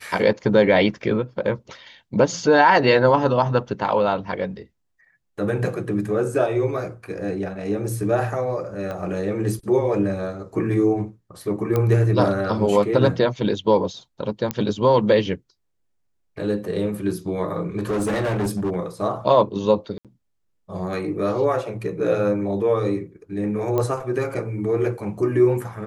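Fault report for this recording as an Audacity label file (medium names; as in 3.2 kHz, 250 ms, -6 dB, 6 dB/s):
8.910000	8.910000	pop -19 dBFS
11.760000	11.760000	pop -10 dBFS
14.510000	14.510000	pop -8 dBFS
17.760000	18.750000	clipped -19.5 dBFS
19.980000	20.050000	dropout 67 ms
23.780000	23.780000	pop -11 dBFS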